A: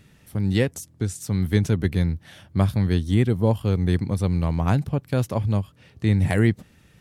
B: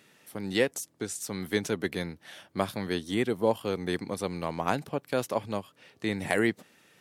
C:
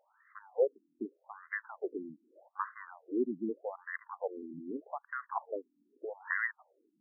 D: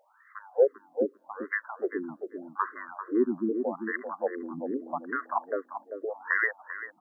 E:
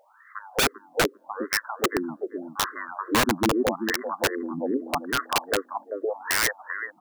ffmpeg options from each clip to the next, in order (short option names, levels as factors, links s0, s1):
-af "highpass=360"
-af "equalizer=f=160:w=1.7:g=-9.5,afftfilt=real='re*between(b*sr/1024,240*pow(1500/240,0.5+0.5*sin(2*PI*0.82*pts/sr))/1.41,240*pow(1500/240,0.5+0.5*sin(2*PI*0.82*pts/sr))*1.41)':imag='im*between(b*sr/1024,240*pow(1500/240,0.5+0.5*sin(2*PI*0.82*pts/sr))/1.41,240*pow(1500/240,0.5+0.5*sin(2*PI*0.82*pts/sr))*1.41)':win_size=1024:overlap=0.75"
-filter_complex "[0:a]acontrast=81,asplit=2[s0][s1];[s1]adelay=392,lowpass=f=1000:p=1,volume=0.473,asplit=2[s2][s3];[s3]adelay=392,lowpass=f=1000:p=1,volume=0.21,asplit=2[s4][s5];[s5]adelay=392,lowpass=f=1000:p=1,volume=0.21[s6];[s2][s4][s6]amix=inputs=3:normalize=0[s7];[s0][s7]amix=inputs=2:normalize=0"
-af "aeval=exprs='(mod(11.2*val(0)+1,2)-1)/11.2':c=same,volume=2"